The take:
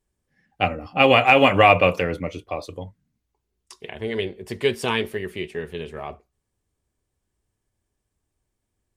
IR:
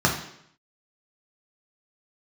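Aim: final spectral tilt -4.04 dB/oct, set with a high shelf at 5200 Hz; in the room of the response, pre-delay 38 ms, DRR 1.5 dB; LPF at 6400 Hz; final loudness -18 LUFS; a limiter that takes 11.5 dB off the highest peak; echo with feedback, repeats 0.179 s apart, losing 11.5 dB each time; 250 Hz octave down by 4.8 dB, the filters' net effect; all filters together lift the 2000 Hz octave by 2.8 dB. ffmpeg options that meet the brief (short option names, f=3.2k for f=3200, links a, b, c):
-filter_complex "[0:a]lowpass=6.4k,equalizer=f=250:t=o:g=-6,equalizer=f=2k:t=o:g=5,highshelf=f=5.2k:g=-6,alimiter=limit=-11dB:level=0:latency=1,aecho=1:1:179|358|537:0.266|0.0718|0.0194,asplit=2[a][b];[1:a]atrim=start_sample=2205,adelay=38[c];[b][c]afir=irnorm=-1:irlink=0,volume=-18dB[d];[a][d]amix=inputs=2:normalize=0,volume=5dB"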